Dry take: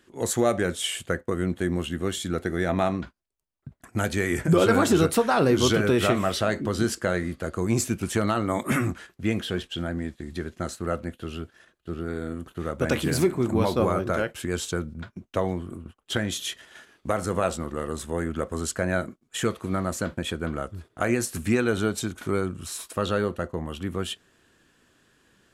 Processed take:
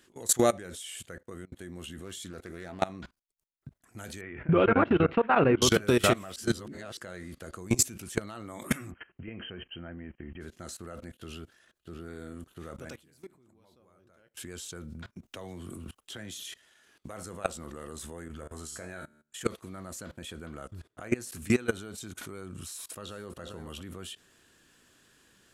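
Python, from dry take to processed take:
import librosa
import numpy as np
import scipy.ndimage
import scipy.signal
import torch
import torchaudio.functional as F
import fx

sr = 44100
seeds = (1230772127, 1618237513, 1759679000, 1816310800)

y = fx.doppler_dist(x, sr, depth_ms=0.26, at=(2.04, 2.83))
y = fx.ellip_lowpass(y, sr, hz=2700.0, order=4, stop_db=80, at=(4.21, 5.62))
y = fx.brickwall_lowpass(y, sr, high_hz=3200.0, at=(8.9, 10.4), fade=0.02)
y = fx.band_squash(y, sr, depth_pct=40, at=(15.23, 16.5))
y = fx.comb_fb(y, sr, f0_hz=75.0, decay_s=0.42, harmonics='all', damping=0.0, mix_pct=80, at=(18.28, 19.41))
y = fx.high_shelf(y, sr, hz=5000.0, db=-5.5, at=(20.7, 21.42))
y = fx.echo_throw(y, sr, start_s=22.68, length_s=0.61, ms=400, feedback_pct=20, wet_db=-15.0)
y = fx.edit(y, sr, fx.fade_out_span(start_s=1.05, length_s=0.47),
    fx.reverse_span(start_s=6.36, length_s=0.61),
    fx.fade_down_up(start_s=12.79, length_s=1.7, db=-23.5, fade_s=0.18), tone=tone)
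y = fx.high_shelf(y, sr, hz=3200.0, db=8.0)
y = fx.level_steps(y, sr, step_db=21)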